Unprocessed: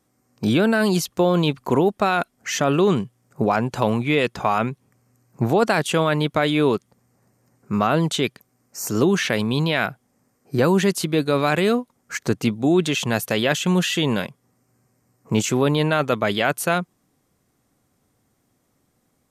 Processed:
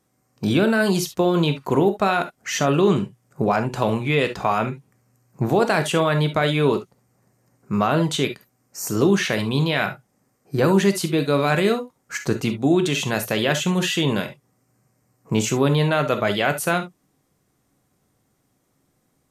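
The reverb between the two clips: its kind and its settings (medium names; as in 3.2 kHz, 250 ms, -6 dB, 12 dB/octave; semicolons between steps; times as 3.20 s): gated-style reverb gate 90 ms flat, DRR 7 dB; trim -1 dB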